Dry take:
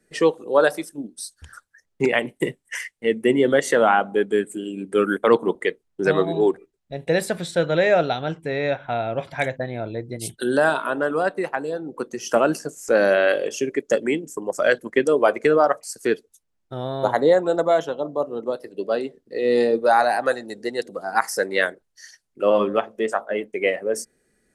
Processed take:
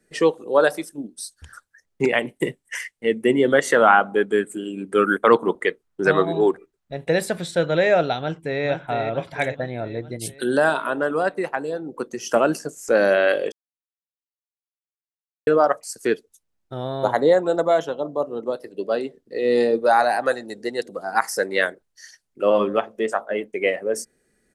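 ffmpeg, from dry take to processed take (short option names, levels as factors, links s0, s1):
-filter_complex "[0:a]asettb=1/sr,asplit=3[s0][s1][s2];[s0]atrim=end=3.534[s3];[s1]atrim=start=3.53:end=7.11,asetpts=PTS-STARTPTS,afade=t=in:d=0.004:c=qsin,afade=t=out:st=3.576:d=0.004:c=qsin,equalizer=f=1300:w=1.5:g=6[s4];[s2]atrim=start=7.106[s5];[s3][s4]acrossfade=d=0.004:c1=hsin:c2=qsin[s6];[s6][s5]acrossfade=d=0.004:c1=qsin:c2=hsin,asplit=2[s7][s8];[s8]afade=t=in:st=8.19:d=0.01,afade=t=out:st=8.64:d=0.01,aecho=0:1:450|900|1350|1800|2250|2700|3150:0.473151|0.260233|0.143128|0.0787205|0.0432963|0.023813|0.0130971[s9];[s7][s9]amix=inputs=2:normalize=0,asplit=3[s10][s11][s12];[s10]atrim=end=13.52,asetpts=PTS-STARTPTS,afade=t=out:st=13.516:d=0.004:c=hsin[s13];[s11]atrim=start=13.52:end=15.47,asetpts=PTS-STARTPTS,volume=0[s14];[s12]atrim=start=15.47,asetpts=PTS-STARTPTS,afade=t=in:d=0.004:c=hsin[s15];[s13][s14][s15]concat=n=3:v=0:a=1"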